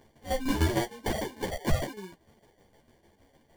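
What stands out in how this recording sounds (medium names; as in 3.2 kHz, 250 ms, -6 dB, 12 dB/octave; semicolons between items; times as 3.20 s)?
tremolo saw down 6.6 Hz, depth 75%; aliases and images of a low sample rate 1.3 kHz, jitter 0%; a shimmering, thickened sound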